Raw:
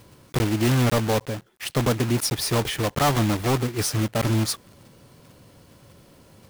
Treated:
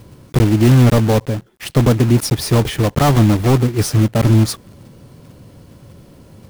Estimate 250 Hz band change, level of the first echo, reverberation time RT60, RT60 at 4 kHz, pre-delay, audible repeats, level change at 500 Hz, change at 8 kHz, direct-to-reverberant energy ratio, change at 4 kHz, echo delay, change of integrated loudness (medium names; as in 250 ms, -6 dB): +10.0 dB, no echo, no reverb, no reverb, no reverb, no echo, +7.5 dB, +2.5 dB, no reverb, +2.5 dB, no echo, +9.0 dB